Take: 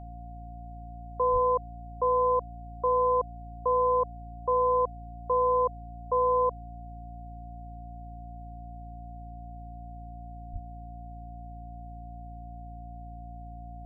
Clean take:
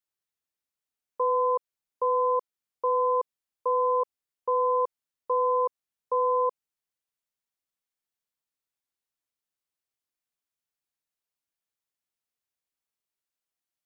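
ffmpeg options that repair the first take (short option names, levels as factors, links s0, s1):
-filter_complex "[0:a]bandreject=f=57.4:t=h:w=4,bandreject=f=114.8:t=h:w=4,bandreject=f=172.2:t=h:w=4,bandreject=f=229.6:t=h:w=4,bandreject=f=287:t=h:w=4,bandreject=f=710:w=30,asplit=3[s0][s1][s2];[s0]afade=t=out:st=1.32:d=0.02[s3];[s1]highpass=f=140:w=0.5412,highpass=f=140:w=1.3066,afade=t=in:st=1.32:d=0.02,afade=t=out:st=1.44:d=0.02[s4];[s2]afade=t=in:st=1.44:d=0.02[s5];[s3][s4][s5]amix=inputs=3:normalize=0,asplit=3[s6][s7][s8];[s6]afade=t=out:st=10.52:d=0.02[s9];[s7]highpass=f=140:w=0.5412,highpass=f=140:w=1.3066,afade=t=in:st=10.52:d=0.02,afade=t=out:st=10.64:d=0.02[s10];[s8]afade=t=in:st=10.64:d=0.02[s11];[s9][s10][s11]amix=inputs=3:normalize=0"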